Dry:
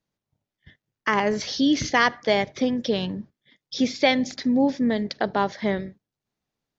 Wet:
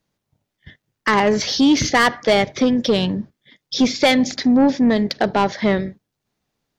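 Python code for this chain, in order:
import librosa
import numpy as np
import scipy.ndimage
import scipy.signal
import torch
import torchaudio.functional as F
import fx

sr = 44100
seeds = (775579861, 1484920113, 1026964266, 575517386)

y = 10.0 ** (-16.5 / 20.0) * np.tanh(x / 10.0 ** (-16.5 / 20.0))
y = F.gain(torch.from_numpy(y), 8.5).numpy()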